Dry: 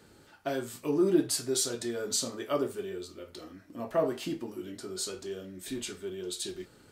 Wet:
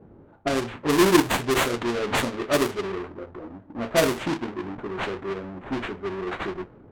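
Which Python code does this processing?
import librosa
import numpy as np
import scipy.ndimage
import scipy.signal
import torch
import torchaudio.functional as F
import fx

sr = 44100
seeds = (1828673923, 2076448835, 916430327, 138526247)

y = fx.halfwave_hold(x, sr)
y = fx.sample_hold(y, sr, seeds[0], rate_hz=5300.0, jitter_pct=20)
y = fx.env_lowpass(y, sr, base_hz=640.0, full_db=-23.0)
y = F.gain(torch.from_numpy(y), 4.0).numpy()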